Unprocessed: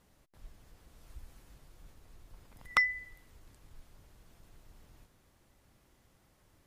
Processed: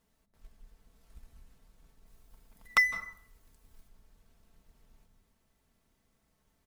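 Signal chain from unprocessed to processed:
mu-law and A-law mismatch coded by A
0:02.06–0:03.88: high-shelf EQ 7,600 Hz +8 dB
comb filter 4.5 ms, depth 48%
on a send: low-shelf EQ 420 Hz +9.5 dB + convolution reverb RT60 0.60 s, pre-delay 151 ms, DRR 12.5 dB

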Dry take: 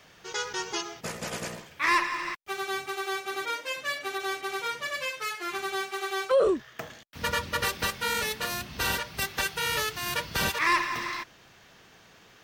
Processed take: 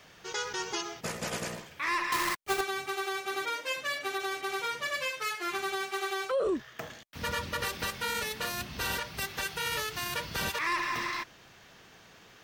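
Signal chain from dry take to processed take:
0:02.12–0:02.61: each half-wave held at its own peak
brickwall limiter −23 dBFS, peak gain reduction 8 dB

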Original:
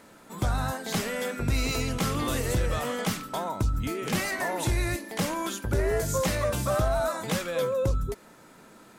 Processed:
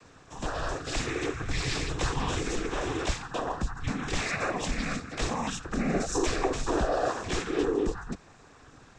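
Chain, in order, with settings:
cochlear-implant simulation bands 12
frequency shifter −150 Hz

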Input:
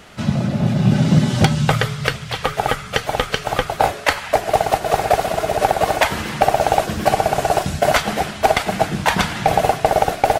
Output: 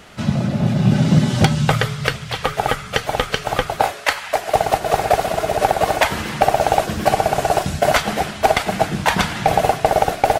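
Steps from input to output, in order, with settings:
0:03.82–0:04.54: low-shelf EQ 430 Hz −10.5 dB

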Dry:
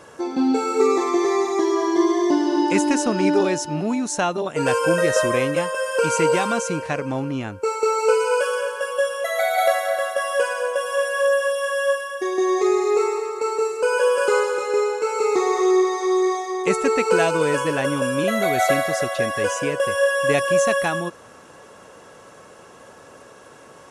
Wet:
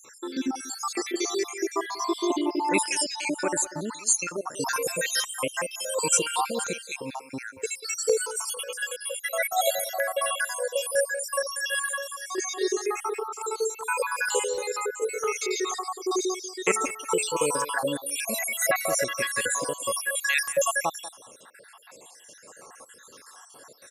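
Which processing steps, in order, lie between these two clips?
time-frequency cells dropped at random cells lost 66%
spectral tilt +3.5 dB per octave
0:08.24–0:08.71: compressor whose output falls as the input rises −31 dBFS, ratio −0.5
0:16.22–0:17.29: hum removal 214.4 Hz, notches 9
far-end echo of a speakerphone 190 ms, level −14 dB
notch on a step sequencer 2.1 Hz 720–6,000 Hz

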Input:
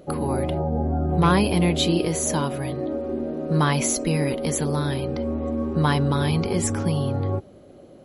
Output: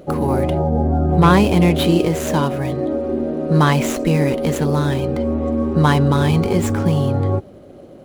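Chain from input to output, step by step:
running median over 9 samples
level +6.5 dB

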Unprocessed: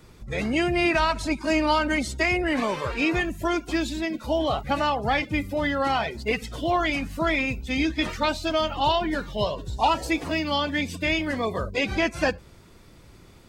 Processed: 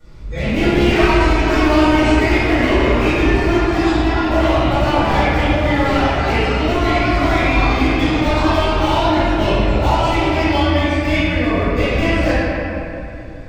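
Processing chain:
delay with pitch and tempo change per echo 98 ms, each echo +3 semitones, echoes 2, each echo −6 dB
delay with a band-pass on its return 259 ms, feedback 50%, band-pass 1,100 Hz, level −12.5 dB
in parallel at −10 dB: wrap-around overflow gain 17 dB
on the sum: low-shelf EQ 100 Hz +10.5 dB
convolution reverb RT60 2.4 s, pre-delay 4 ms, DRR −17.5 dB
level −17 dB

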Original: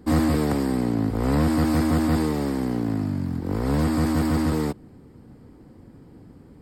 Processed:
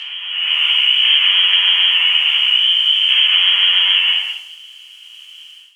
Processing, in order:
spectrum averaged block by block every 200 ms
voice inversion scrambler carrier 2,800 Hz
background noise violet −47 dBFS
high-frequency loss of the air 99 metres
rectangular room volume 480 cubic metres, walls mixed, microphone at 3.6 metres
downward compressor 6 to 1, threshold −23 dBFS, peak gain reduction 12 dB
high-pass filter 1,000 Hz 12 dB per octave
automatic gain control gain up to 10 dB
speed change +15%
multiband upward and downward expander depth 70%
level +3 dB

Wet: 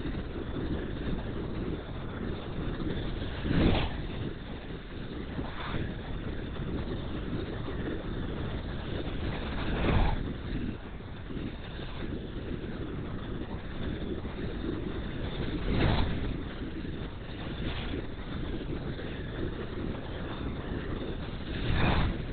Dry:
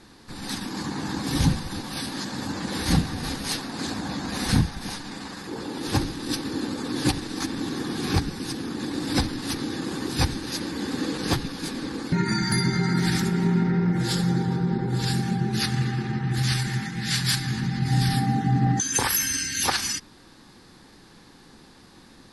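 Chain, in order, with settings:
extreme stretch with random phases 5.8×, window 0.05 s, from 0:06.45
linear-prediction vocoder at 8 kHz whisper
level −5 dB

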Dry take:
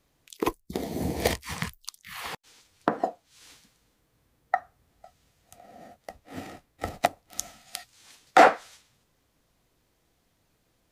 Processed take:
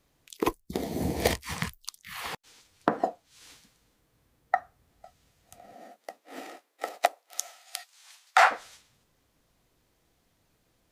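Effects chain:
0:05.73–0:08.50: high-pass filter 220 Hz → 870 Hz 24 dB per octave

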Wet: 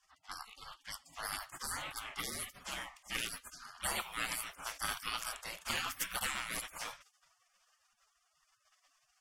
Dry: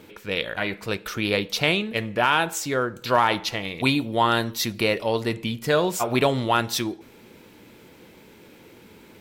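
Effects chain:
gate on every frequency bin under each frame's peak −30 dB weak
low-pass that shuts in the quiet parts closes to 2,800 Hz, open at −44.5 dBFS
thirty-one-band graphic EQ 400 Hz −4 dB, 1,250 Hz +5 dB, 4,000 Hz −11 dB
level +7.5 dB

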